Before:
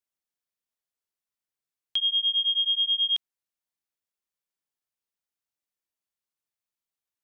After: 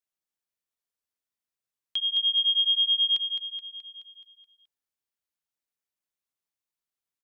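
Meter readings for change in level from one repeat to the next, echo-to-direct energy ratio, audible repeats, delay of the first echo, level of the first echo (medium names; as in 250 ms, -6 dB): -5.0 dB, -5.5 dB, 6, 213 ms, -7.0 dB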